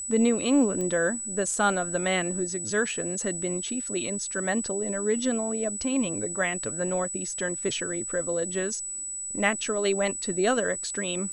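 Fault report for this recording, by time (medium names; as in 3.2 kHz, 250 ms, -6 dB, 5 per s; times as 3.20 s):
whine 7.9 kHz -32 dBFS
0.81 s: pop -20 dBFS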